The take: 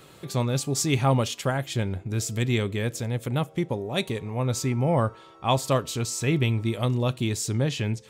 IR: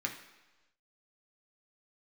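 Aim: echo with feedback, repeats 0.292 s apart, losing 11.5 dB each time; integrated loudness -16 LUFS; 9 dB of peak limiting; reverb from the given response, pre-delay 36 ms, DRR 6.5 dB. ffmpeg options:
-filter_complex "[0:a]alimiter=limit=-16.5dB:level=0:latency=1,aecho=1:1:292|584|876:0.266|0.0718|0.0194,asplit=2[a][b];[1:a]atrim=start_sample=2205,adelay=36[c];[b][c]afir=irnorm=-1:irlink=0,volume=-10dB[d];[a][d]amix=inputs=2:normalize=0,volume=10.5dB"

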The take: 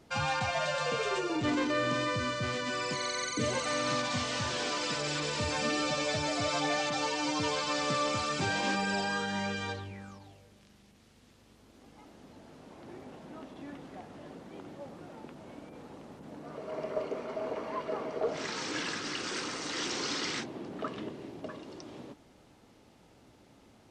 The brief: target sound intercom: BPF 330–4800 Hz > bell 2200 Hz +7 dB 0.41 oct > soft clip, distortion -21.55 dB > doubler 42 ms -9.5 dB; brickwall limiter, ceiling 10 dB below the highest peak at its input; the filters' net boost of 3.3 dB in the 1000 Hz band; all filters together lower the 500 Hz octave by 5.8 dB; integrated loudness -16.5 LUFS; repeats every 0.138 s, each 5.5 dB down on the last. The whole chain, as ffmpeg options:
-filter_complex "[0:a]equalizer=f=500:t=o:g=-8.5,equalizer=f=1k:t=o:g=6,alimiter=level_in=5dB:limit=-24dB:level=0:latency=1,volume=-5dB,highpass=330,lowpass=4.8k,equalizer=f=2.2k:t=o:w=0.41:g=7,aecho=1:1:138|276|414|552|690|828|966:0.531|0.281|0.149|0.079|0.0419|0.0222|0.0118,asoftclip=threshold=-27.5dB,asplit=2[a][b];[b]adelay=42,volume=-9.5dB[c];[a][c]amix=inputs=2:normalize=0,volume=19.5dB"

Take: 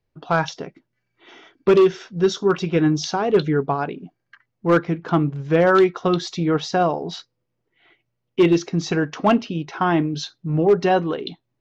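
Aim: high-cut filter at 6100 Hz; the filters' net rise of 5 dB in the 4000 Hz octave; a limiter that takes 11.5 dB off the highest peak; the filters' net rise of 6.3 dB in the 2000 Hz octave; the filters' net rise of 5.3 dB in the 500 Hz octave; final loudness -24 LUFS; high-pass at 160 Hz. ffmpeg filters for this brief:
-af "highpass=160,lowpass=6.1k,equalizer=f=500:t=o:g=7,equalizer=f=2k:t=o:g=7.5,equalizer=f=4k:t=o:g=4.5,volume=-2dB,alimiter=limit=-13dB:level=0:latency=1"

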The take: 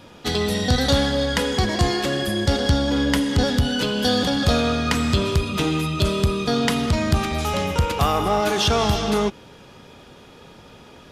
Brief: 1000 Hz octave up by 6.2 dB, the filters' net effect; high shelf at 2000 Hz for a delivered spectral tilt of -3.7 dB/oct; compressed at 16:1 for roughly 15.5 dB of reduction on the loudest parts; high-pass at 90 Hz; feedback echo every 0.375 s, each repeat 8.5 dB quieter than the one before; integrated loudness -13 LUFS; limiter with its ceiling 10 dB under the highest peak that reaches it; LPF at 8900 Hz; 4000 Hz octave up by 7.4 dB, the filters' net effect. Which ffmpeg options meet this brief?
-af "highpass=90,lowpass=8.9k,equalizer=f=1k:t=o:g=7,highshelf=f=2k:g=4,equalizer=f=4k:t=o:g=5,acompressor=threshold=-27dB:ratio=16,alimiter=limit=-21.5dB:level=0:latency=1,aecho=1:1:375|750|1125|1500:0.376|0.143|0.0543|0.0206,volume=18dB"

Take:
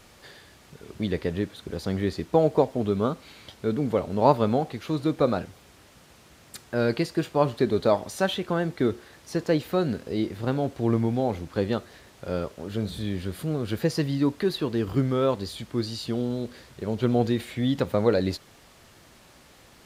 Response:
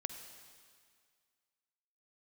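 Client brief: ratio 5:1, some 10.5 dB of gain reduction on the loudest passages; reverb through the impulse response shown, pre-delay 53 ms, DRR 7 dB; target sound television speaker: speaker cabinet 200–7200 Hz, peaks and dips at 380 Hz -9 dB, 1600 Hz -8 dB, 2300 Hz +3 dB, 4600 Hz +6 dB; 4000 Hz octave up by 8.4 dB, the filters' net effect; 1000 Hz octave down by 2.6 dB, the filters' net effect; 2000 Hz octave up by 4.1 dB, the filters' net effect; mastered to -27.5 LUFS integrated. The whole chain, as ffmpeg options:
-filter_complex "[0:a]equalizer=f=1k:t=o:g=-4.5,equalizer=f=2k:t=o:g=8,equalizer=f=4k:t=o:g=5,acompressor=threshold=-27dB:ratio=5,asplit=2[a][b];[1:a]atrim=start_sample=2205,adelay=53[c];[b][c]afir=irnorm=-1:irlink=0,volume=-6dB[d];[a][d]amix=inputs=2:normalize=0,highpass=f=200:w=0.5412,highpass=f=200:w=1.3066,equalizer=f=380:t=q:w=4:g=-9,equalizer=f=1.6k:t=q:w=4:g=-8,equalizer=f=2.3k:t=q:w=4:g=3,equalizer=f=4.6k:t=q:w=4:g=6,lowpass=f=7.2k:w=0.5412,lowpass=f=7.2k:w=1.3066,volume=6dB"

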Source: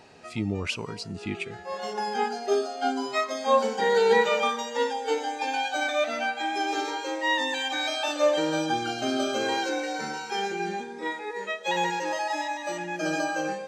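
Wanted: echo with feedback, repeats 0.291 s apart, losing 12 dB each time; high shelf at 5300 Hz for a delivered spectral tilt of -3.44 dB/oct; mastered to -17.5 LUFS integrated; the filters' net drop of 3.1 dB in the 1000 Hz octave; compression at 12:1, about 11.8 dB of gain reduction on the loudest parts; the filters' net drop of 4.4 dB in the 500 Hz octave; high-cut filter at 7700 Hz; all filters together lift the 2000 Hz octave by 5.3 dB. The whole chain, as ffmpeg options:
-af "lowpass=7.7k,equalizer=f=500:t=o:g=-4.5,equalizer=f=1k:t=o:g=-4,equalizer=f=2k:t=o:g=8.5,highshelf=f=5.3k:g=-4.5,acompressor=threshold=-29dB:ratio=12,aecho=1:1:291|582|873:0.251|0.0628|0.0157,volume=15dB"

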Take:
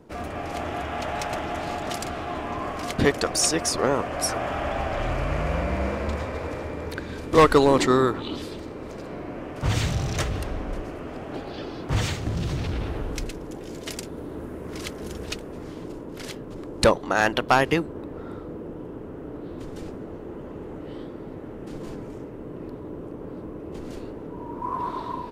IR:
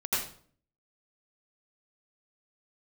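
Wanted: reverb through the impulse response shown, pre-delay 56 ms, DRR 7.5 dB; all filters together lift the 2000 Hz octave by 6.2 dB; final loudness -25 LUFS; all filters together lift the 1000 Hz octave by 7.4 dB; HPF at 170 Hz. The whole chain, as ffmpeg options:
-filter_complex "[0:a]highpass=170,equalizer=f=1k:t=o:g=8,equalizer=f=2k:t=o:g=5,asplit=2[a][b];[1:a]atrim=start_sample=2205,adelay=56[c];[b][c]afir=irnorm=-1:irlink=0,volume=-16dB[d];[a][d]amix=inputs=2:normalize=0,volume=-3.5dB"

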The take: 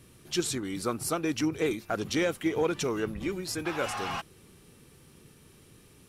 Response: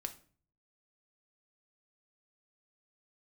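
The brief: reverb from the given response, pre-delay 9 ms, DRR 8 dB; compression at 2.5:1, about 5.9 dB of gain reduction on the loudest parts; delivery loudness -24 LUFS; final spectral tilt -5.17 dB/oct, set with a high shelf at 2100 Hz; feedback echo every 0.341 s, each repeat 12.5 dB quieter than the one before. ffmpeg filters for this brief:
-filter_complex "[0:a]highshelf=f=2.1k:g=-8.5,acompressor=threshold=-32dB:ratio=2.5,aecho=1:1:341|682|1023:0.237|0.0569|0.0137,asplit=2[a][b];[1:a]atrim=start_sample=2205,adelay=9[c];[b][c]afir=irnorm=-1:irlink=0,volume=-6dB[d];[a][d]amix=inputs=2:normalize=0,volume=10.5dB"

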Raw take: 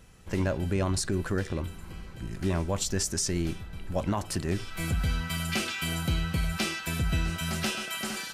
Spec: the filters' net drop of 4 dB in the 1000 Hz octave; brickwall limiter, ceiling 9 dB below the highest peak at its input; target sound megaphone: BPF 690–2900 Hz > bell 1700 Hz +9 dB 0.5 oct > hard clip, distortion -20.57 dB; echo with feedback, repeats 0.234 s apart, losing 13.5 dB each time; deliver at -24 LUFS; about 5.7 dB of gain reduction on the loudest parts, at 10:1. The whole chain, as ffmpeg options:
-af "equalizer=f=1k:t=o:g=-6.5,acompressor=threshold=-29dB:ratio=10,alimiter=level_in=5dB:limit=-24dB:level=0:latency=1,volume=-5dB,highpass=690,lowpass=2.9k,equalizer=f=1.7k:t=o:w=0.5:g=9,aecho=1:1:234|468:0.211|0.0444,asoftclip=type=hard:threshold=-33dB,volume=18.5dB"

